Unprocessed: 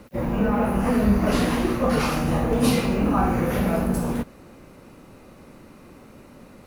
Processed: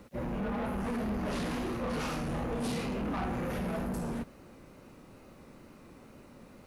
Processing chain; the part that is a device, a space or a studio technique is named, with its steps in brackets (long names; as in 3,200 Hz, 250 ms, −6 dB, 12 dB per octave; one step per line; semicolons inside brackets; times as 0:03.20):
compact cassette (soft clipping −24 dBFS, distortion −9 dB; low-pass filter 11,000 Hz 12 dB per octave; tape wow and flutter; white noise bed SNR 40 dB)
level −6.5 dB